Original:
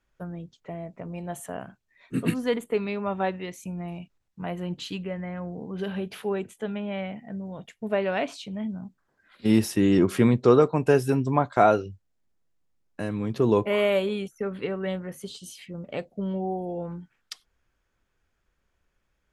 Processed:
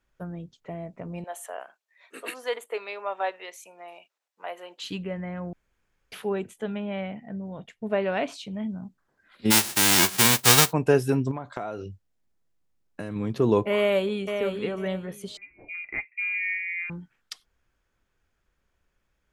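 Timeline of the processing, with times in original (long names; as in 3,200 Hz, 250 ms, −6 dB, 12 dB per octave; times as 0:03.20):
0:01.24–0:04.84: high-pass filter 500 Hz 24 dB per octave
0:05.53–0:06.12: fill with room tone
0:06.84–0:08.23: high-shelf EQ 8,500 Hz −11.5 dB
0:09.50–0:10.71: spectral envelope flattened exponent 0.1
0:11.31–0:13.16: downward compressor 16 to 1, threshold −28 dBFS
0:13.77–0:14.37: delay throw 500 ms, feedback 20%, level −6.5 dB
0:15.37–0:16.90: voice inversion scrambler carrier 2,600 Hz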